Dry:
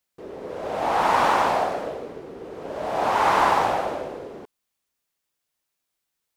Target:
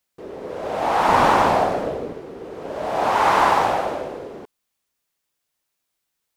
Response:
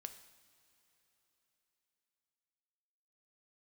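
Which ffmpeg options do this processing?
-filter_complex "[0:a]asettb=1/sr,asplit=3[a][b][c];[a]atrim=end=1.084[d];[b]atrim=start=1.08:end=2.13,asetpts=PTS-STARTPTS,afade=t=in:d=0.004:c=qsin,afade=t=out:st=1.046:d=0.004:c=qsin,lowshelf=f=330:g=9[e];[c]atrim=start=2.126[f];[d][e]acrossfade=d=0.004:c1=hsin:c2=qsin[g];[g][f]acrossfade=d=0.004:c1=qsin:c2=hsin,volume=2.5dB"

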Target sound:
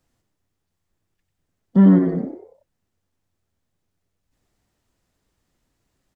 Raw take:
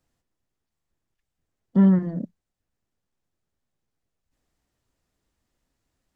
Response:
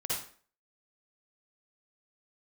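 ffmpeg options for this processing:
-filter_complex "[0:a]asplit=5[a][b][c][d][e];[b]adelay=94,afreqshift=89,volume=-7.5dB[f];[c]adelay=188,afreqshift=178,volume=-16.6dB[g];[d]adelay=282,afreqshift=267,volume=-25.7dB[h];[e]adelay=376,afreqshift=356,volume=-34.9dB[i];[a][f][g][h][i]amix=inputs=5:normalize=0,volume=4dB"

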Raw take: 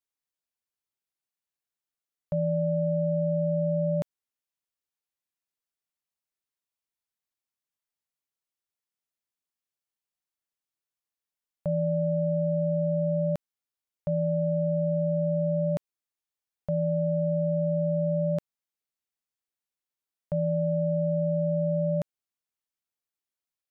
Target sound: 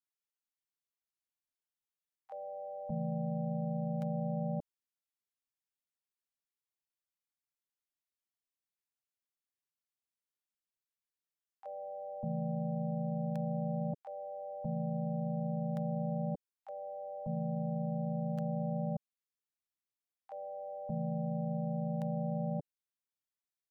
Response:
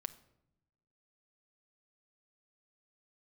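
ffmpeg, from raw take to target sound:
-filter_complex "[0:a]acrossover=split=620[a][b];[a]adelay=580[c];[c][b]amix=inputs=2:normalize=0,asplit=3[d][e][f];[e]asetrate=37084,aresample=44100,atempo=1.18921,volume=-10dB[g];[f]asetrate=58866,aresample=44100,atempo=0.749154,volume=-5dB[h];[d][g][h]amix=inputs=3:normalize=0,volume=-8.5dB"

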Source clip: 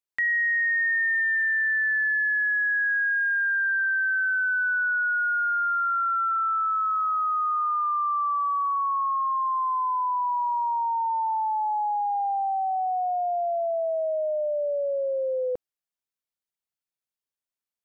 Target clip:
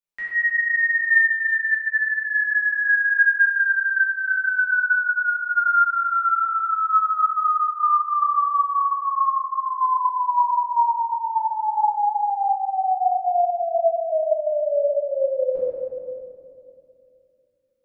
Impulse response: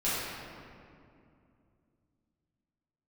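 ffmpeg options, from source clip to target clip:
-filter_complex "[0:a]asettb=1/sr,asplit=3[a][b][c];[a]atrim=end=6.214[d];[b]atrim=start=6.21:end=6.61,asetpts=PTS-STARTPTS,afade=t=in:d=0.004:c=qsin,afade=t=out:st=0.396:d=0.004:c=qsin,lowpass=f=1.2k:p=1[e];[c]atrim=start=6.606[f];[d][e]acrossfade=d=0.004:c1=hsin:c2=qsin[g];[g][f]acrossfade=d=0.004:c1=qsin:c2=hsin[h];[1:a]atrim=start_sample=2205[i];[h][i]afir=irnorm=-1:irlink=0,volume=-6dB"

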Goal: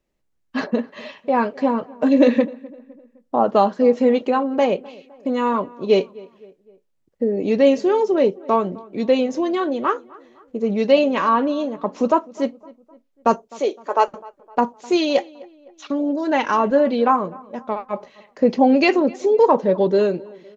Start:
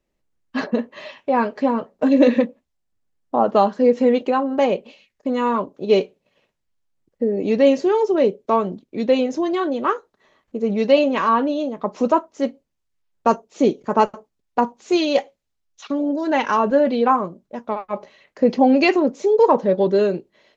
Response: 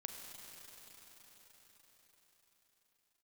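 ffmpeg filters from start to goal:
-filter_complex "[0:a]asettb=1/sr,asplit=3[a][b][c];[a]atrim=end=13.484[d];[b]atrim=start=13.48:end=14.08,asetpts=PTS-STARTPTS,afade=t=in:d=0.004:c=qsin,afade=t=out:st=0.596:d=0.004:c=qsin,highpass=f=420:w=0.5412,highpass=f=420:w=1.3066[e];[c]atrim=start=14.076[f];[d][e]acrossfade=d=0.004:c1=hsin:c2=qsin[g];[g][f]acrossfade=d=0.004:c1=qsin:c2=hsin,asplit=2[h][i];[i]adelay=256,lowpass=f=2.1k:p=1,volume=-22dB,asplit=2[j][k];[k]adelay=256,lowpass=f=2.1k:p=1,volume=0.48,asplit=2[l][m];[m]adelay=256,lowpass=f=2.1k:p=1,volume=0.48[n];[h][j][l][n]amix=inputs=4:normalize=0"

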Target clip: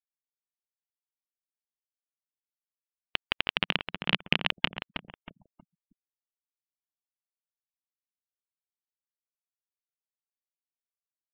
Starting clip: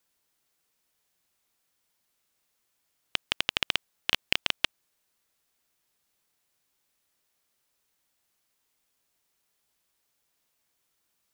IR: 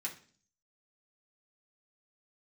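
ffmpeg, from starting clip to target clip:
-filter_complex "[0:a]asplit=3[a][b][c];[a]afade=t=out:st=3.57:d=0.02[d];[b]equalizer=f=180:w=1.3:g=13,afade=t=in:st=3.57:d=0.02,afade=t=out:st=4.39:d=0.02[e];[c]afade=t=in:st=4.39:d=0.02[f];[d][e][f]amix=inputs=3:normalize=0,asplit=2[g][h];[h]adelay=318,lowpass=f=1.5k:p=1,volume=-5dB,asplit=2[i][j];[j]adelay=318,lowpass=f=1.5k:p=1,volume=0.42,asplit=2[k][l];[l]adelay=318,lowpass=f=1.5k:p=1,volume=0.42,asplit=2[m][n];[n]adelay=318,lowpass=f=1.5k:p=1,volume=0.42,asplit=2[o][p];[p]adelay=318,lowpass=f=1.5k:p=1,volume=0.42[q];[g][i][k][m][o][q]amix=inputs=6:normalize=0,afftfilt=real='re*gte(hypot(re,im),0.00447)':imag='im*gte(hypot(re,im),0.00447)':win_size=1024:overlap=0.75,lowpass=f=3.2k:w=0.5412,lowpass=f=3.2k:w=1.3066,volume=1.5dB"

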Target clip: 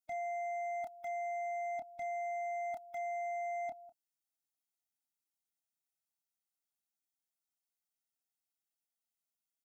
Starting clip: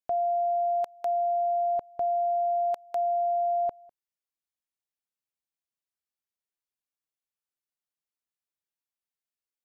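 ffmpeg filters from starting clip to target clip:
-filter_complex "[0:a]bass=f=250:g=-13,treble=f=4k:g=11,asplit=2[a][b];[b]adelay=28,volume=-12.5dB[c];[a][c]amix=inputs=2:normalize=0,aeval=exprs='0.0376*(abs(mod(val(0)/0.0376+3,4)-2)-1)':c=same,tiltshelf=f=720:g=6,asoftclip=type=tanh:threshold=-36.5dB,afftfilt=real='re*eq(mod(floor(b*sr/1024/310),2),0)':imag='im*eq(mod(floor(b*sr/1024/310),2),0)':win_size=1024:overlap=0.75"

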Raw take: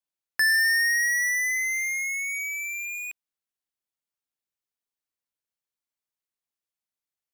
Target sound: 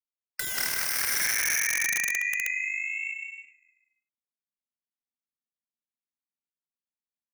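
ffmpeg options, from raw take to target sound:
-filter_complex "[0:a]agate=range=-9dB:threshold=-25dB:ratio=16:detection=peak,lowpass=3.8k,afftdn=nr=15:nf=-49,acontrast=88,asubboost=boost=7.5:cutoff=73,asplit=2[a][b];[b]aecho=0:1:170|272|333.2|369.9|392:0.631|0.398|0.251|0.158|0.1[c];[a][c]amix=inputs=2:normalize=0,asoftclip=type=hard:threshold=-17.5dB,asplit=2[d][e];[e]asplit=4[f][g][h][i];[f]adelay=145,afreqshift=-36,volume=-23.5dB[j];[g]adelay=290,afreqshift=-72,volume=-27.8dB[k];[h]adelay=435,afreqshift=-108,volume=-32.1dB[l];[i]adelay=580,afreqshift=-144,volume=-36.4dB[m];[j][k][l][m]amix=inputs=4:normalize=0[n];[d][n]amix=inputs=2:normalize=0,aeval=exprs='(mod(14.1*val(0)+1,2)-1)/14.1':c=same,aeval=exprs='val(0)*sin(2*PI*240*n/s)':c=same,volume=4.5dB"

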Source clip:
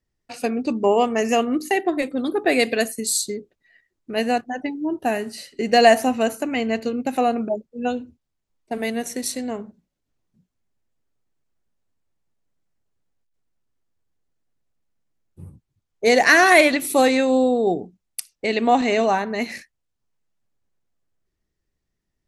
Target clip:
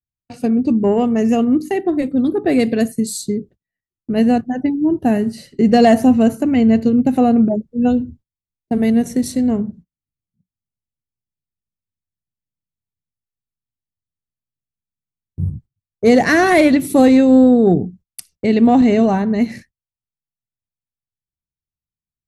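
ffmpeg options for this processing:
-af "lowshelf=f=200:g=12,bandreject=f=2.5k:w=18,asoftclip=type=tanh:threshold=-5dB,dynaudnorm=f=510:g=13:m=5dB,agate=range=-28dB:threshold=-44dB:ratio=16:detection=peak,equalizer=f=130:w=0.38:g=14.5,volume=-6dB"

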